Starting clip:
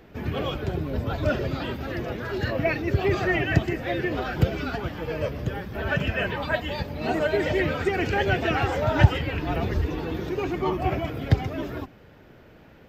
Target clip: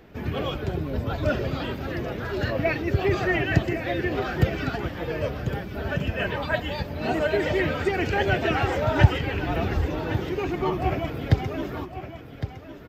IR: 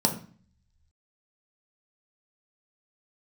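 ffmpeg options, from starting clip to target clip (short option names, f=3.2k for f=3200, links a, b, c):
-filter_complex "[0:a]asettb=1/sr,asplit=3[a][b][c];[a]atrim=end=5.634[d];[b]atrim=start=5.63:end=6.2,asetpts=PTS-STARTPTS,afade=t=in:d=0.004:c=qsin,afade=t=out:st=0.566:d=0.004:c=qsin,equalizer=f=1.7k:t=o:w=2.3:g=-6[e];[c]atrim=start=6.196[f];[d][e]acrossfade=d=0.004:c1=hsin:c2=qsin[g];[g][f]acrossfade=d=0.004:c1=qsin:c2=hsin,aecho=1:1:1110:0.282"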